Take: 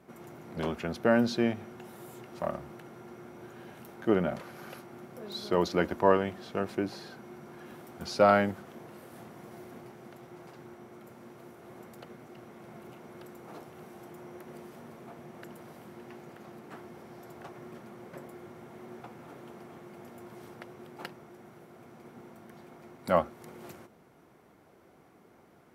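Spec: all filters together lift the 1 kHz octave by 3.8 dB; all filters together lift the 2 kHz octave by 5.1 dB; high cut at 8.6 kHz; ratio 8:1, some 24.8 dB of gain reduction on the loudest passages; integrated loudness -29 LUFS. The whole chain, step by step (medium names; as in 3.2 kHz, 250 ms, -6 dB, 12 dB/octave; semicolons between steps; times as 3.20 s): low-pass 8.6 kHz; peaking EQ 1 kHz +3.5 dB; peaking EQ 2 kHz +5.5 dB; compression 8:1, threshold -41 dBFS; trim +18 dB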